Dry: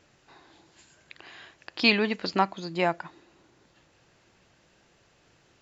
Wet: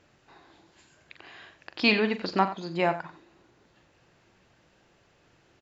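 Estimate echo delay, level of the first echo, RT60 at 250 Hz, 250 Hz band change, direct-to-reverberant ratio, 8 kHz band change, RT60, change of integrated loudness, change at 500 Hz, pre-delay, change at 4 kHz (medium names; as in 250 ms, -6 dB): 42 ms, -11.5 dB, no reverb, +0.5 dB, no reverb, no reading, no reverb, -0.5 dB, +0.5 dB, no reverb, -2.5 dB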